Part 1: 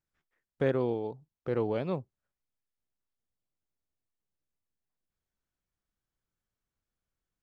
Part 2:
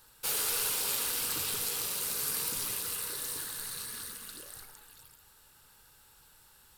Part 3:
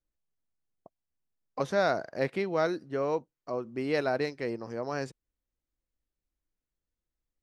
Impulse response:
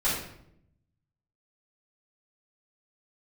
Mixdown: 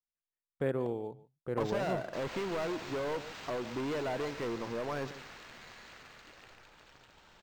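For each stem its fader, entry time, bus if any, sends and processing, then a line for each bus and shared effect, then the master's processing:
-4.5 dB, 0.00 s, no bus, no send, echo send -20 dB, gate with hold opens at -50 dBFS
-13.0 dB, 1.90 s, bus A, no send, echo send -4 dB, upward compressor, threshold -35 dBFS
-13.5 dB, 0.00 s, bus A, no send, echo send -17.5 dB, sample leveller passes 5
bus A: 0.0 dB, bell 970 Hz +5 dB 0.37 oct; compressor 2:1, threshold -36 dBFS, peak gain reduction 4.5 dB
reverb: off
echo: echo 0.144 s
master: decimation joined by straight lines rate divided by 4×

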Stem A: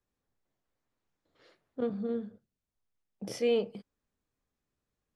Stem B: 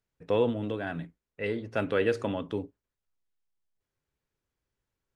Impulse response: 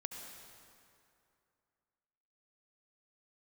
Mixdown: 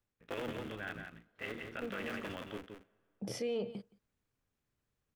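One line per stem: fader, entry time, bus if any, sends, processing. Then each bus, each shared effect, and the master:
-1.0 dB, 0.00 s, no send, echo send -23 dB, bell 110 Hz +7 dB; auto duck -9 dB, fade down 0.25 s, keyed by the second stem
-12.5 dB, 0.00 s, send -19.5 dB, echo send -6 dB, cycle switcher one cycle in 3, muted; band shelf 2000 Hz +9 dB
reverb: on, RT60 2.6 s, pre-delay 63 ms
echo: echo 0.171 s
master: limiter -28.5 dBFS, peak gain reduction 9.5 dB

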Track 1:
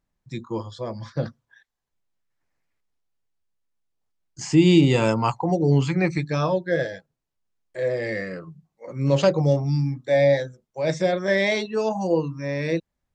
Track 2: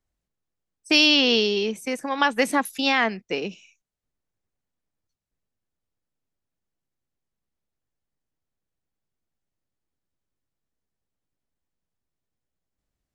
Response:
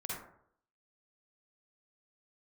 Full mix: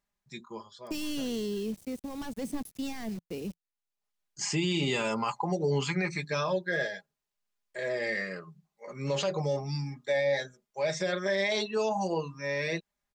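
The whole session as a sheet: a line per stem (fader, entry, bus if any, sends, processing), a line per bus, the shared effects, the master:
-0.5 dB, 0.00 s, no send, low shelf 490 Hz -12 dB; comb 4.9 ms, depth 62%; auto duck -13 dB, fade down 1.15 s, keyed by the second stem
-0.5 dB, 0.00 s, no send, requantised 6-bit, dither none; hard clip -21 dBFS, distortion -6 dB; EQ curve 170 Hz 0 dB, 1500 Hz -22 dB, 5200 Hz -13 dB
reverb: off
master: limiter -20 dBFS, peak gain reduction 10 dB

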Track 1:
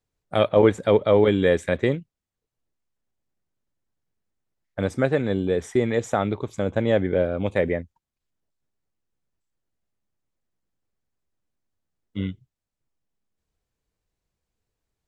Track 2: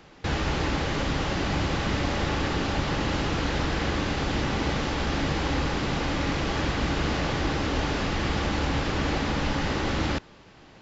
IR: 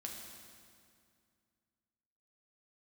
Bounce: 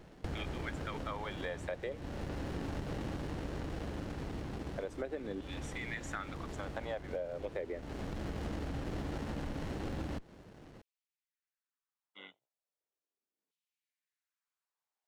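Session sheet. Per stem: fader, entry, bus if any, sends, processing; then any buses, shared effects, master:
-10.0 dB, 0.00 s, no send, octaver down 2 oct, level -6 dB; low shelf 220 Hz -8 dB; LFO high-pass saw down 0.37 Hz 250–3100 Hz
-1.5 dB, 0.00 s, no send, running maximum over 33 samples; auto duck -12 dB, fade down 1.70 s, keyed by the first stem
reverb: off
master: compressor, threshold -36 dBFS, peak gain reduction 13 dB

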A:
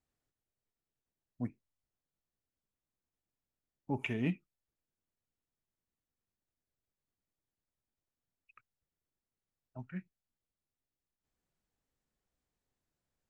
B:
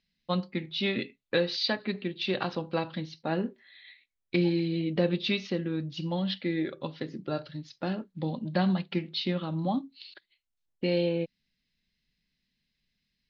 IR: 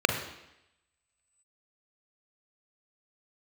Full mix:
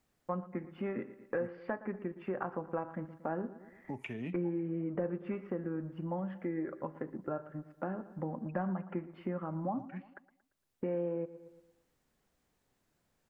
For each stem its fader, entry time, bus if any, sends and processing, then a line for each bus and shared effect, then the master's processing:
0.0 dB, 0.00 s, no send, no echo send, three-band squash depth 40%
+1.5 dB, 0.00 s, no send, echo send -18 dB, tilt +2.5 dB/oct; sample leveller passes 1; inverse Chebyshev low-pass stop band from 3600 Hz, stop band 50 dB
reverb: off
echo: feedback echo 0.115 s, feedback 42%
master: compressor 2:1, threshold -39 dBFS, peak gain reduction 11 dB

